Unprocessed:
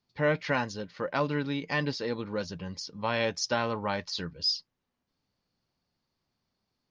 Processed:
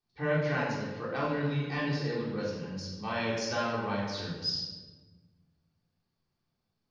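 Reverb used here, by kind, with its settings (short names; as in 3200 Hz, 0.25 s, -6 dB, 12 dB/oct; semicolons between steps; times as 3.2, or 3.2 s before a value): shoebox room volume 1000 m³, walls mixed, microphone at 3.6 m; gain -10 dB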